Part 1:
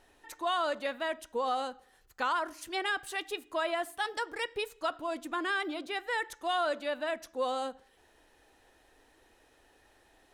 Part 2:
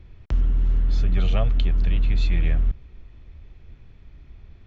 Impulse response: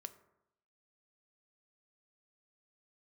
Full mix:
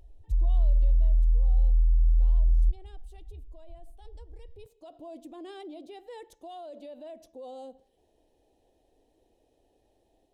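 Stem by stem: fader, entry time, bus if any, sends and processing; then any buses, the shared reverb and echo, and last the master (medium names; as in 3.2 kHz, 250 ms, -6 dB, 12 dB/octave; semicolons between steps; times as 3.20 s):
-5.0 dB, 0.00 s, no send, FFT filter 680 Hz 0 dB, 1.4 kHz -26 dB, 3.1 kHz -10 dB; peak limiter -35.5 dBFS, peak gain reduction 12 dB; auto duck -11 dB, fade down 1.40 s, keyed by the second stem
+2.5 dB, 0.00 s, no send, compression 3:1, threshold -21 dBFS, peak gain reduction 5 dB; loudest bins only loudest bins 1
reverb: none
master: level rider gain up to 3.5 dB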